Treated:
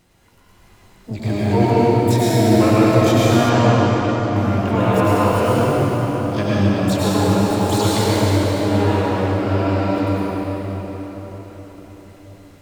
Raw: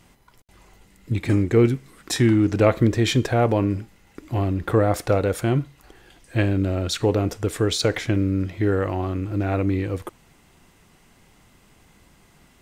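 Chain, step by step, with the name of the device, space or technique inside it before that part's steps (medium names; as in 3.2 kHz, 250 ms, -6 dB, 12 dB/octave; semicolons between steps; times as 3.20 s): shimmer-style reverb (harmony voices +12 st -4 dB; reverberation RT60 5.0 s, pre-delay 93 ms, DRR -8.5 dB); 3.49–4.36 s: low-pass 7.4 kHz 24 dB/octave; gated-style reverb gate 470 ms falling, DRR 11 dB; trim -6 dB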